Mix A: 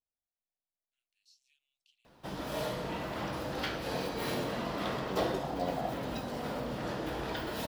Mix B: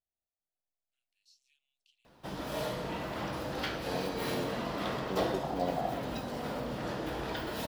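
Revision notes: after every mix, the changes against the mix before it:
reverb: on, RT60 0.60 s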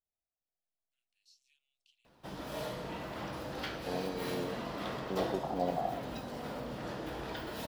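background −4.0 dB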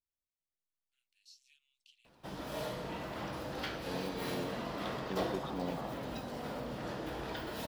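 first voice +6.0 dB
second voice: remove low-pass with resonance 700 Hz, resonance Q 5.2

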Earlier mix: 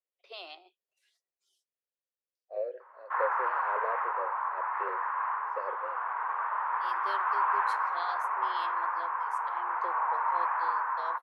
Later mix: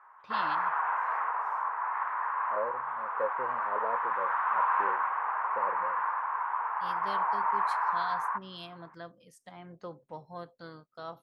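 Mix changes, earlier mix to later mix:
second voice: add high-frequency loss of the air 190 metres
background: entry −2.80 s
master: remove Chebyshev high-pass filter 360 Hz, order 6

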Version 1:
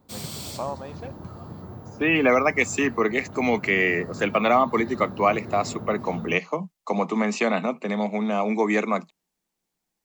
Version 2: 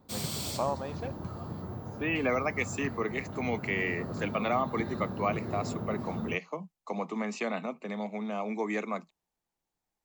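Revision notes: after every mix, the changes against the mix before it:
second voice −10.0 dB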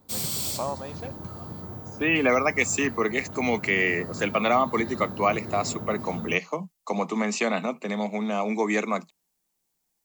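second voice +7.0 dB
master: add high-shelf EQ 5,500 Hz +11.5 dB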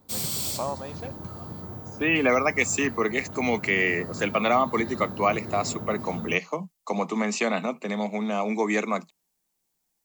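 nothing changed

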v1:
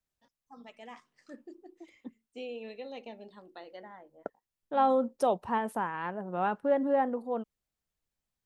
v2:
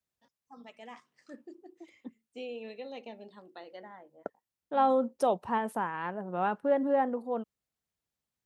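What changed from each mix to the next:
master: add high-pass filter 76 Hz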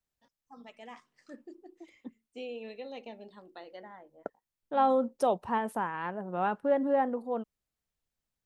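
master: remove high-pass filter 76 Hz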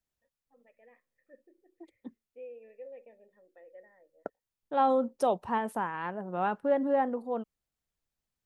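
first voice: add formant resonators in series e

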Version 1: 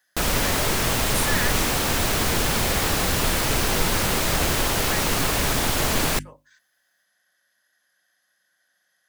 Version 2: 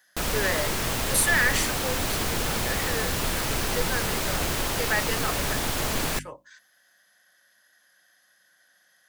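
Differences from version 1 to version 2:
speech +7.0 dB
background −5.0 dB

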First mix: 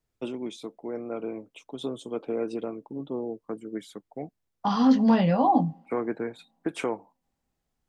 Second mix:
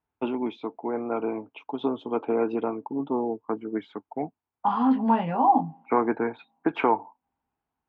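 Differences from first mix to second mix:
first voice +9.0 dB
master: add loudspeaker in its box 100–2,500 Hz, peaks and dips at 130 Hz −9 dB, 190 Hz −9 dB, 350 Hz −4 dB, 540 Hz −9 dB, 900 Hz +8 dB, 1,900 Hz −6 dB

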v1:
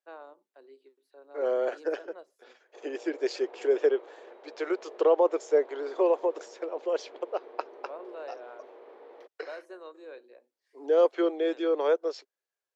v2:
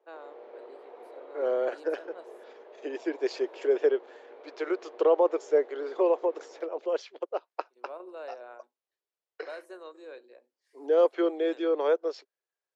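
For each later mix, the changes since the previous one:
first voice: add high-shelf EQ 7,100 Hz +11 dB
second voice: add high-frequency loss of the air 57 metres
background: entry −2.60 s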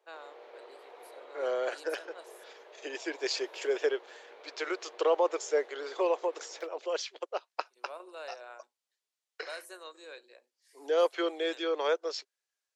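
master: add spectral tilt +4.5 dB per octave

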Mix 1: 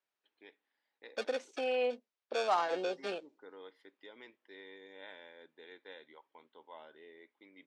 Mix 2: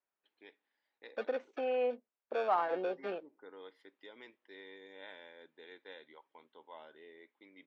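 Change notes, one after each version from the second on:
second voice: add low-pass filter 1,900 Hz 12 dB per octave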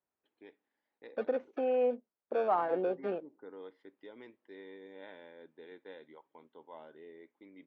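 master: add spectral tilt −3.5 dB per octave

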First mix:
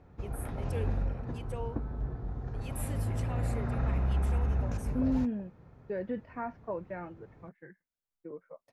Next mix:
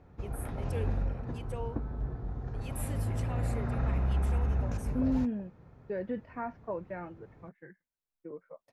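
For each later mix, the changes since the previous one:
nothing changed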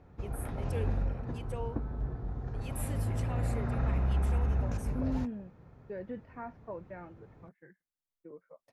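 second voice −5.5 dB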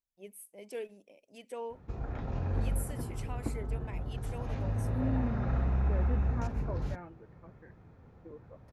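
background: entry +1.70 s

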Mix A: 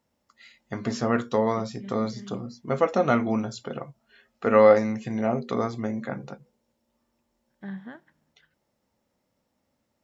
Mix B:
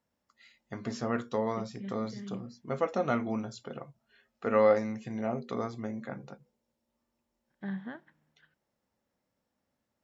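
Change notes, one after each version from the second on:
first voice −7.5 dB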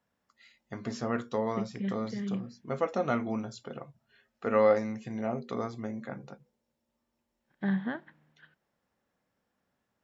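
second voice +7.5 dB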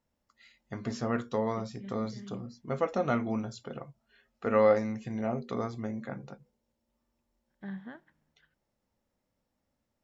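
first voice: remove high-pass filter 120 Hz 6 dB per octave
second voice −11.0 dB

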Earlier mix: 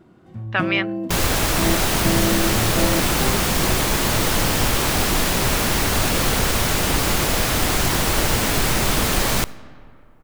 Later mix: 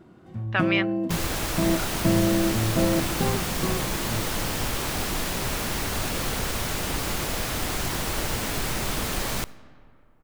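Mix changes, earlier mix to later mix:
speech −3.5 dB
second sound −8.5 dB

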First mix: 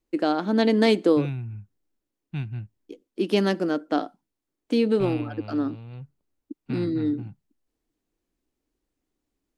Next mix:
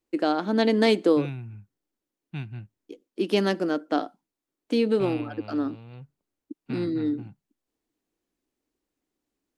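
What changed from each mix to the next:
master: add low-shelf EQ 100 Hz −12 dB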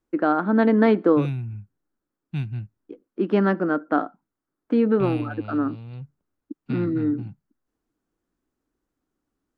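first voice: add low-pass with resonance 1,400 Hz, resonance Q 2.6
master: add bass and treble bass +8 dB, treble +5 dB

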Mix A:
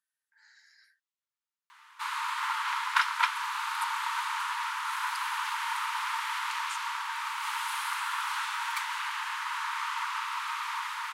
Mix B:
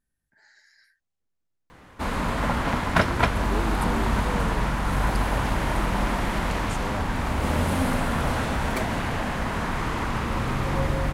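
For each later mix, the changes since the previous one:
master: remove Chebyshev high-pass with heavy ripple 890 Hz, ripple 3 dB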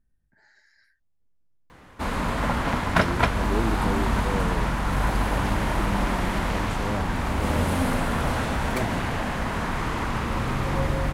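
speech: add spectral tilt −2.5 dB per octave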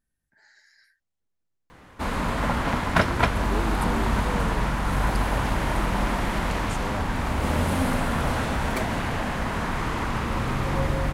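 speech: add spectral tilt +2.5 dB per octave

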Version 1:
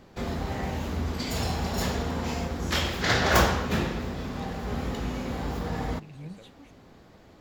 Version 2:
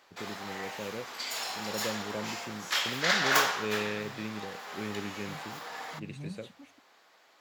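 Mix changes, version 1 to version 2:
first voice +10.0 dB
background: add high-pass filter 1,000 Hz 12 dB per octave

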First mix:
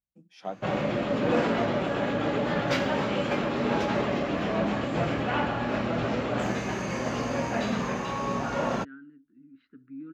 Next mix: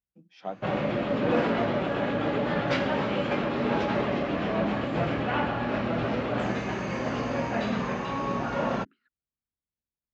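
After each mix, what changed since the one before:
second voice: entry −1.80 s
master: add low-pass filter 4,400 Hz 12 dB per octave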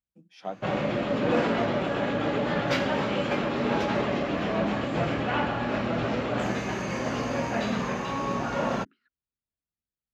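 master: remove high-frequency loss of the air 100 metres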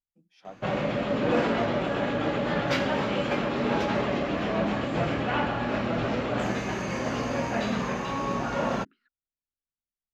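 first voice −8.5 dB
master: remove high-pass filter 49 Hz

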